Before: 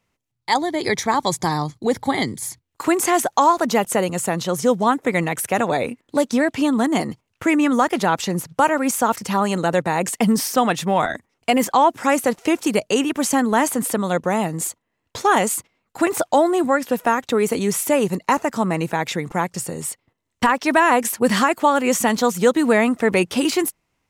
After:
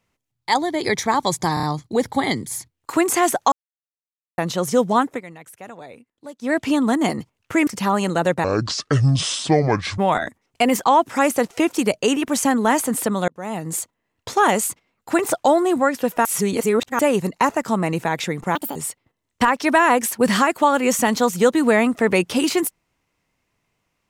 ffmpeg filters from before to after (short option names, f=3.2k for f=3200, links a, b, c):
-filter_complex "[0:a]asplit=16[a][b][c][d][e][f][g][h][i][j][k][l][m][n][o][p];[a]atrim=end=1.572[q];[b]atrim=start=1.538:end=1.572[r];[c]atrim=start=1.538:end=1.572[s];[d]atrim=start=1.538:end=3.43,asetpts=PTS-STARTPTS,afade=t=out:st=1.888:d=0.004:c=hsin[t];[e]atrim=start=3.43:end=4.29,asetpts=PTS-STARTPTS,volume=0[u];[f]atrim=start=4.29:end=5.12,asetpts=PTS-STARTPTS,afade=t=in:d=0.004:c=hsin,afade=t=out:st=0.71:d=0.12:silence=0.11885[v];[g]atrim=start=5.12:end=6.33,asetpts=PTS-STARTPTS,volume=-18.5dB[w];[h]atrim=start=6.33:end=7.582,asetpts=PTS-STARTPTS,afade=t=in:d=0.12:silence=0.11885[x];[i]atrim=start=9.148:end=9.924[y];[j]atrim=start=9.92:end=10.86,asetpts=PTS-STARTPTS,asetrate=26901,aresample=44100,atrim=end_sample=67957,asetpts=PTS-STARTPTS[z];[k]atrim=start=10.856:end=14.16,asetpts=PTS-STARTPTS,afade=t=out:st=3.3:d=0.004:c=hsin[aa];[l]atrim=start=14.16:end=17.132,asetpts=PTS-STARTPTS,afade=t=in:d=0.51[ab];[m]atrim=start=17.128:end=17.872,asetpts=PTS-STARTPTS,areverse[ac];[n]atrim=start=17.868:end=19.434[ad];[o]atrim=start=19.43:end=19.77,asetpts=PTS-STARTPTS,asetrate=73206,aresample=44100[ae];[p]atrim=start=19.766[af];[q][r]acrossfade=d=0.004:c1=hsin:c2=hsin[ag];[ag][s]acrossfade=d=0.004:c1=hsin:c2=hsin[ah];[t][u][v][w][x]concat=n=5:v=0:a=1[ai];[ah][ai]acrossfade=d=0.004:c1=hsin:c2=hsin[aj];[aj][y]acrossfade=d=0.004:c1=hsin:c2=hsin[ak];[ak][z]acrossfade=d=0.004:c1=hsin:c2=hsin[al];[aa][ab]concat=n=2:v=0:a=1[am];[al][am]acrossfade=d=0.004:c1=hsin:c2=hsin[an];[an][ac]acrossfade=d=0.004:c1=hsin:c2=hsin[ao];[ao][ad]acrossfade=d=0.004:c1=hsin:c2=hsin[ap];[ap][ae]acrossfade=d=0.004:c1=hsin:c2=hsin[aq];[aq][af]acrossfade=d=0.004:c1=hsin:c2=hsin"